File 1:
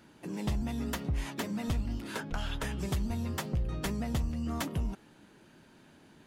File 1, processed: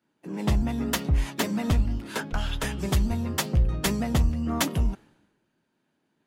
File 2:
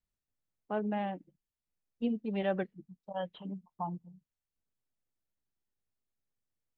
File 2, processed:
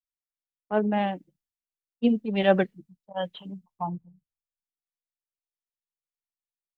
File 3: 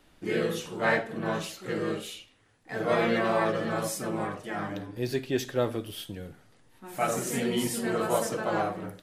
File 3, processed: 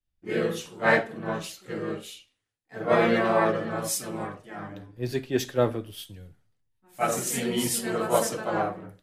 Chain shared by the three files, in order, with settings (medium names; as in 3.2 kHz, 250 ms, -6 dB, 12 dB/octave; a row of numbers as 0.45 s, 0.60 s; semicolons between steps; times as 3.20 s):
three bands expanded up and down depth 100%; normalise loudness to -27 LUFS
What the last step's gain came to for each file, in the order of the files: +7.5 dB, +7.0 dB, +1.0 dB